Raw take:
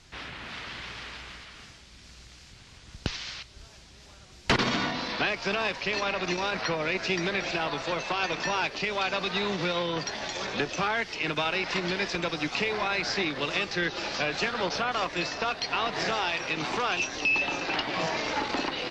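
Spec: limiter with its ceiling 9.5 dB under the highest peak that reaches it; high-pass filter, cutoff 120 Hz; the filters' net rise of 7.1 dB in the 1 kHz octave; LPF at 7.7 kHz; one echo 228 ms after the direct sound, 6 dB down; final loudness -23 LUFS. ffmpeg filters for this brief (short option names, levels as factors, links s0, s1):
-af "highpass=120,lowpass=7700,equalizer=f=1000:t=o:g=9,alimiter=limit=0.126:level=0:latency=1,aecho=1:1:228:0.501,volume=1.58"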